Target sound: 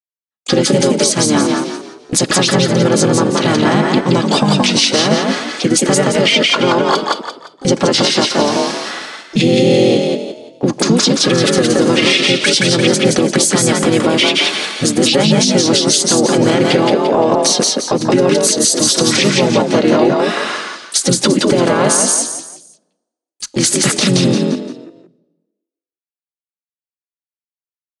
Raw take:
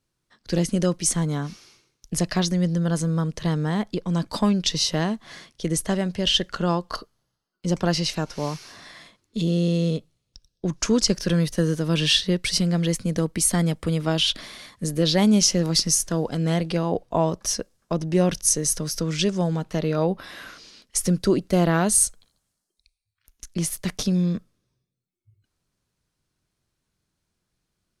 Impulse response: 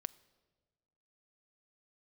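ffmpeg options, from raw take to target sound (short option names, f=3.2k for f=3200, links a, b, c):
-filter_complex "[0:a]highpass=240,agate=range=-58dB:threshold=-45dB:ratio=16:detection=peak,aecho=1:1:3.6:0.58,acompressor=threshold=-25dB:ratio=20,asplit=4[a][b][c][d];[b]asetrate=29433,aresample=44100,atempo=1.49831,volume=-10dB[e];[c]asetrate=33038,aresample=44100,atempo=1.33484,volume=-3dB[f];[d]asetrate=66075,aresample=44100,atempo=0.66742,volume=-15dB[g];[a][e][f][g]amix=inputs=4:normalize=0,asplit=5[h][i][j][k][l];[i]adelay=172,afreqshift=38,volume=-3dB[m];[j]adelay=344,afreqshift=76,volume=-12.6dB[n];[k]adelay=516,afreqshift=114,volume=-22.3dB[o];[l]adelay=688,afreqshift=152,volume=-31.9dB[p];[h][m][n][o][p]amix=inputs=5:normalize=0,asplit=2[q][r];[1:a]atrim=start_sample=2205[s];[r][s]afir=irnorm=-1:irlink=0,volume=6dB[t];[q][t]amix=inputs=2:normalize=0,aresample=22050,aresample=44100,alimiter=level_in=9dB:limit=-1dB:release=50:level=0:latency=1,volume=-1dB"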